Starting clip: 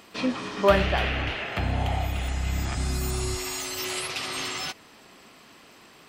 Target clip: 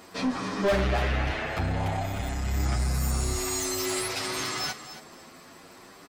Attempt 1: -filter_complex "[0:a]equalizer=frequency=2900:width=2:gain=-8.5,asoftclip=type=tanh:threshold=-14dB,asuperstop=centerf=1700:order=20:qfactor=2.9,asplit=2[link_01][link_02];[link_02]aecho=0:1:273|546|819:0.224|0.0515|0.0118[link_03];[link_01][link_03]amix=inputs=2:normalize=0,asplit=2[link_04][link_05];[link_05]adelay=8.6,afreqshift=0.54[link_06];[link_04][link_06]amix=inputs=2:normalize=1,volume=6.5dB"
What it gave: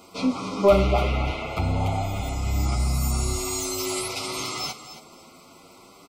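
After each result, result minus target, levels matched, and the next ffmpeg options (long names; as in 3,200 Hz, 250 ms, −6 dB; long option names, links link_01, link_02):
soft clipping: distortion −9 dB; 2,000 Hz band −5.5 dB
-filter_complex "[0:a]equalizer=frequency=2900:width=2:gain=-8.5,asoftclip=type=tanh:threshold=-26dB,asuperstop=centerf=1700:order=20:qfactor=2.9,asplit=2[link_01][link_02];[link_02]aecho=0:1:273|546|819:0.224|0.0515|0.0118[link_03];[link_01][link_03]amix=inputs=2:normalize=0,asplit=2[link_04][link_05];[link_05]adelay=8.6,afreqshift=0.54[link_06];[link_04][link_06]amix=inputs=2:normalize=1,volume=6.5dB"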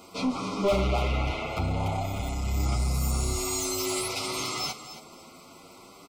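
2,000 Hz band −4.0 dB
-filter_complex "[0:a]equalizer=frequency=2900:width=2:gain=-8.5,asoftclip=type=tanh:threshold=-26dB,asplit=2[link_01][link_02];[link_02]aecho=0:1:273|546|819:0.224|0.0515|0.0118[link_03];[link_01][link_03]amix=inputs=2:normalize=0,asplit=2[link_04][link_05];[link_05]adelay=8.6,afreqshift=0.54[link_06];[link_04][link_06]amix=inputs=2:normalize=1,volume=6.5dB"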